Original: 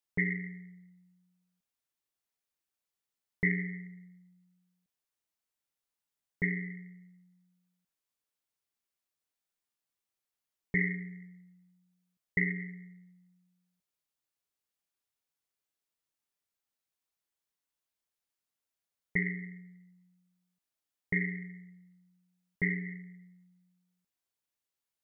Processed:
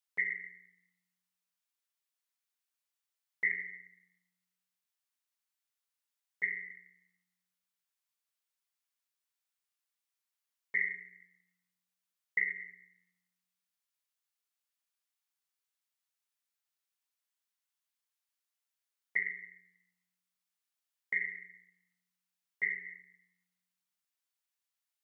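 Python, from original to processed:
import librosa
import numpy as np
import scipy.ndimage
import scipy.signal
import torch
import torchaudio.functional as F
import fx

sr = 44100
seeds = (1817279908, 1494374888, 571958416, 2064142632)

y = scipy.signal.sosfilt(scipy.signal.butter(2, 990.0, 'highpass', fs=sr, output='sos'), x)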